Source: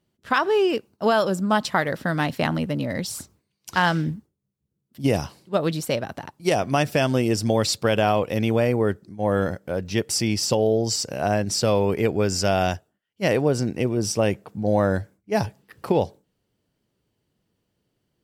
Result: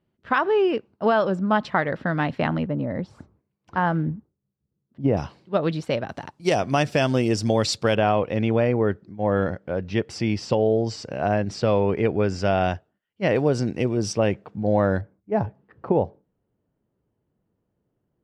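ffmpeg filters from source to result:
ffmpeg -i in.wav -af "asetnsamples=nb_out_samples=441:pad=0,asendcmd='2.67 lowpass f 1200;5.17 lowpass f 3300;6.09 lowpass f 6800;7.95 lowpass f 2800;13.36 lowpass f 5600;14.13 lowpass f 3200;15.01 lowpass f 1200',lowpass=2500" out.wav

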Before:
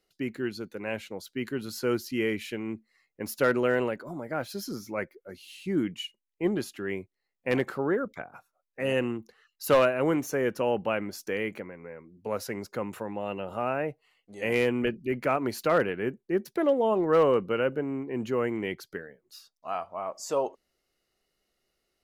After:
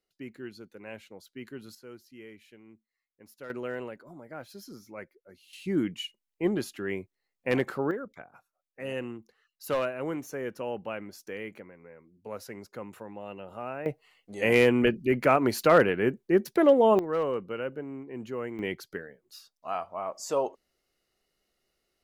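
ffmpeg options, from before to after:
ffmpeg -i in.wav -af "asetnsamples=nb_out_samples=441:pad=0,asendcmd='1.75 volume volume -19.5dB;3.5 volume volume -10dB;5.53 volume volume 0dB;7.91 volume volume -7.5dB;13.86 volume volume 4.5dB;16.99 volume volume -7dB;18.59 volume volume 0dB',volume=-9.5dB" out.wav

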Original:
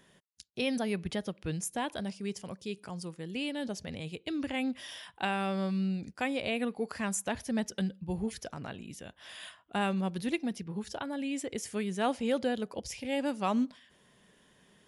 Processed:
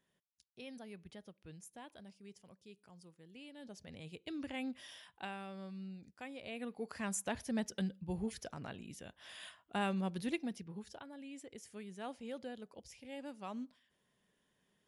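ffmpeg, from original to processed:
ffmpeg -i in.wav -af "volume=2dB,afade=type=in:start_time=3.52:duration=0.69:silence=0.316228,afade=type=out:start_time=4.86:duration=0.61:silence=0.446684,afade=type=in:start_time=6.4:duration=0.79:silence=0.298538,afade=type=out:start_time=10.25:duration=0.83:silence=0.316228" out.wav

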